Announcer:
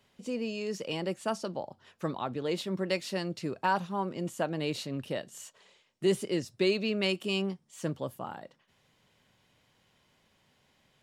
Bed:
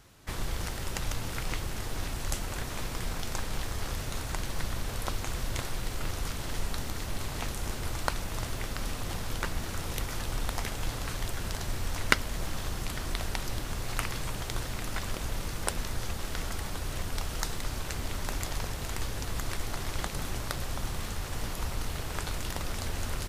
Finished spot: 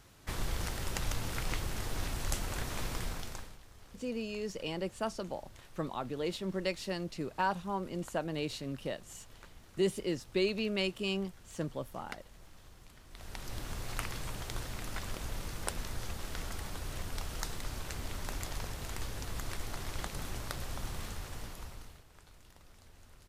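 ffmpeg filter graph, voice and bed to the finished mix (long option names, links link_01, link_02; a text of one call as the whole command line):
ffmpeg -i stem1.wav -i stem2.wav -filter_complex "[0:a]adelay=3750,volume=-3.5dB[link_01];[1:a]volume=14.5dB,afade=type=out:start_time=2.93:duration=0.64:silence=0.1,afade=type=in:start_time=13.1:duration=0.55:silence=0.149624,afade=type=out:start_time=21.04:duration=1:silence=0.112202[link_02];[link_01][link_02]amix=inputs=2:normalize=0" out.wav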